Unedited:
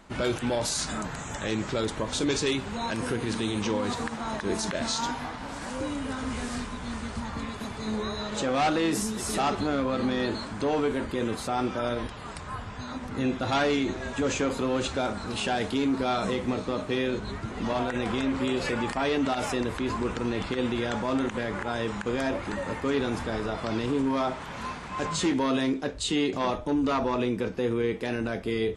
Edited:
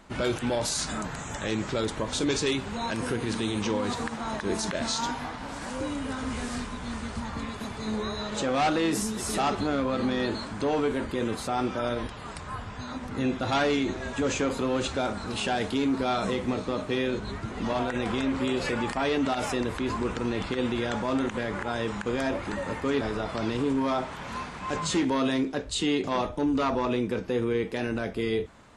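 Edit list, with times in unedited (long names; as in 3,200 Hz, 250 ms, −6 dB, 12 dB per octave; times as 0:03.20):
0:23.01–0:23.30: remove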